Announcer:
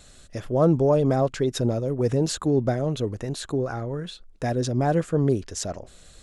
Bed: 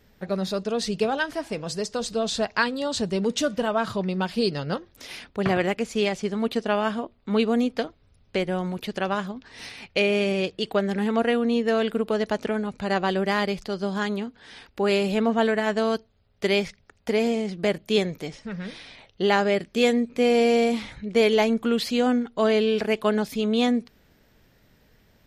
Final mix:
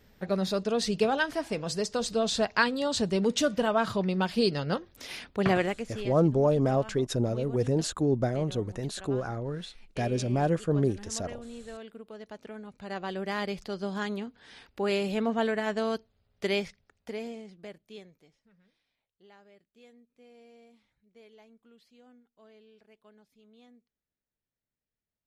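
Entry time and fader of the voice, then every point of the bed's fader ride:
5.55 s, -4.0 dB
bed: 5.54 s -1.5 dB
6.25 s -20.5 dB
12.12 s -20.5 dB
13.59 s -6 dB
16.55 s -6 dB
18.85 s -36 dB

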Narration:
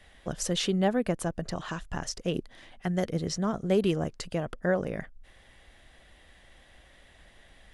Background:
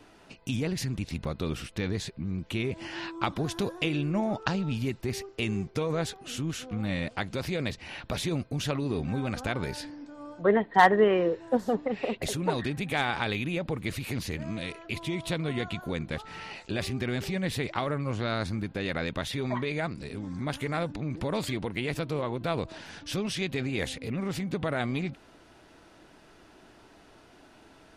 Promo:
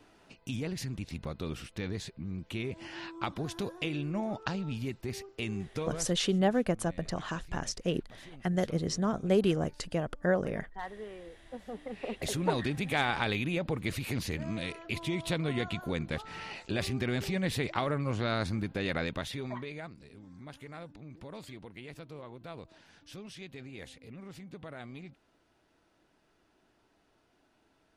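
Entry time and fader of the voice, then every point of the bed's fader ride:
5.60 s, -1.0 dB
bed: 5.87 s -5.5 dB
6.22 s -22.5 dB
11.35 s -22.5 dB
12.35 s -1 dB
18.98 s -1 dB
20.08 s -15 dB

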